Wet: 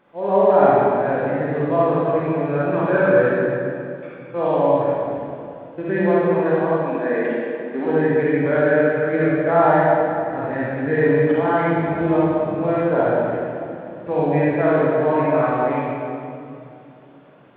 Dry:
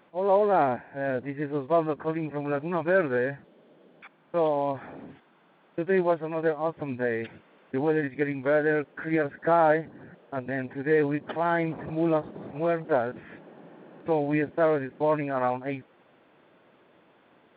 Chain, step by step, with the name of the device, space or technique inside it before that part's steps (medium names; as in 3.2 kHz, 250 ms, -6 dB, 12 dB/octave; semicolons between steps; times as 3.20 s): 6.75–7.86 s: steep high-pass 210 Hz 36 dB/octave; swimming-pool hall (reverberation RT60 2.6 s, pre-delay 36 ms, DRR -8 dB; treble shelf 3.3 kHz -6.5 dB)